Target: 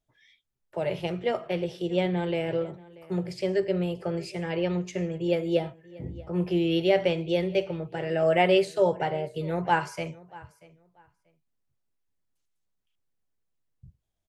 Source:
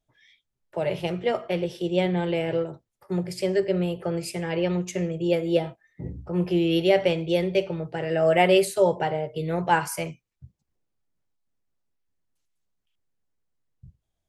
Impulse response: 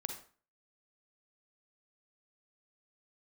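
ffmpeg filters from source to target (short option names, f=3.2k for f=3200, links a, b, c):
-filter_complex "[0:a]asplit=2[a][b];[b]adelay=636,lowpass=f=3.7k:p=1,volume=-21dB,asplit=2[c][d];[d]adelay=636,lowpass=f=3.7k:p=1,volume=0.21[e];[a][c][e]amix=inputs=3:normalize=0,acrossover=split=6300[f][g];[g]acompressor=threshold=-58dB:ratio=4:attack=1:release=60[h];[f][h]amix=inputs=2:normalize=0,volume=-2.5dB"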